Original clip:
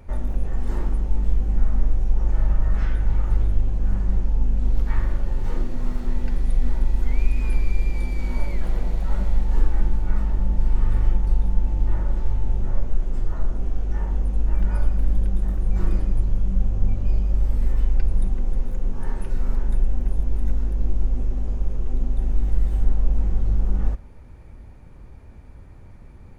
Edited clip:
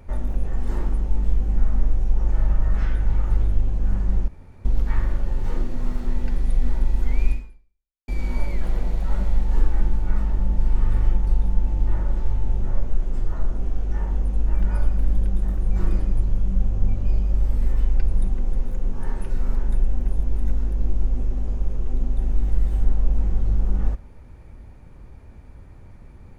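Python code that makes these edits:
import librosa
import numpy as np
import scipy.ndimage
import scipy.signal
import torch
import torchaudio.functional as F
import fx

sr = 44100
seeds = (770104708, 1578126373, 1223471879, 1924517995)

y = fx.edit(x, sr, fx.room_tone_fill(start_s=4.28, length_s=0.37),
    fx.fade_out_span(start_s=7.32, length_s=0.76, curve='exp'), tone=tone)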